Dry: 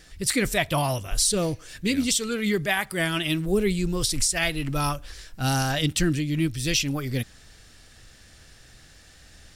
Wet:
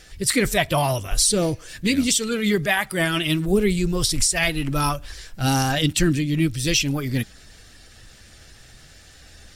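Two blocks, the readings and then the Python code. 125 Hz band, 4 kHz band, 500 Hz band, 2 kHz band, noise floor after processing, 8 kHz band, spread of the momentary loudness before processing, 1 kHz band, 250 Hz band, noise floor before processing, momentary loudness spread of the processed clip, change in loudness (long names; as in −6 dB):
+3.5 dB, +3.5 dB, +3.5 dB, +3.5 dB, −48 dBFS, +3.5 dB, 7 LU, +4.0 dB, +4.0 dB, −52 dBFS, 7 LU, +3.5 dB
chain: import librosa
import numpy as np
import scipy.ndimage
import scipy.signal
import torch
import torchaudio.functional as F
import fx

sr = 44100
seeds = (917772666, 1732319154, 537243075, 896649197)

y = fx.spec_quant(x, sr, step_db=15)
y = F.gain(torch.from_numpy(y), 4.0).numpy()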